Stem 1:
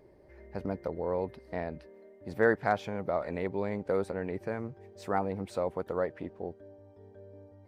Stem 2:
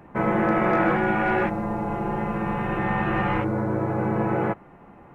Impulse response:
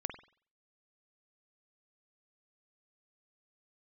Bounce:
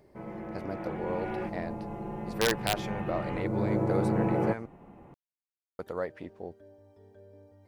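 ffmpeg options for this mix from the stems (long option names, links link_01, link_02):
-filter_complex "[0:a]highshelf=frequency=2400:gain=8.5,aeval=exprs='(mod(4.47*val(0)+1,2)-1)/4.47':channel_layout=same,volume=-3dB,asplit=3[link_01][link_02][link_03];[link_01]atrim=end=4.66,asetpts=PTS-STARTPTS,afade=type=out:start_time=4.656:duration=0.004:curve=hsin[link_04];[link_02]atrim=start=4.66:end=5.79,asetpts=PTS-STARTPTS,volume=0[link_05];[link_03]atrim=start=5.79,asetpts=PTS-STARTPTS,afade=type=in:duration=0.004:curve=hsin[link_06];[link_04][link_05][link_06]concat=n=3:v=0:a=1[link_07];[1:a]equalizer=frequency=1500:width=0.97:gain=-9,volume=-2dB,afade=type=in:start_time=0.72:duration=0.65:silence=0.421697,afade=type=in:start_time=3.37:duration=0.35:silence=0.421697[link_08];[link_07][link_08]amix=inputs=2:normalize=0"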